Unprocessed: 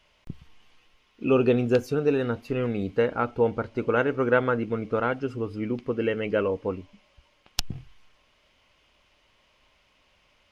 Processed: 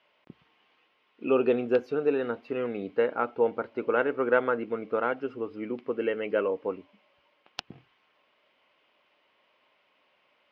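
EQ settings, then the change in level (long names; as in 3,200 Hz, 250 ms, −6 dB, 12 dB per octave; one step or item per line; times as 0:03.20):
high-pass filter 320 Hz 12 dB per octave
high-frequency loss of the air 330 metres
high-shelf EQ 5,100 Hz +4 dB
0.0 dB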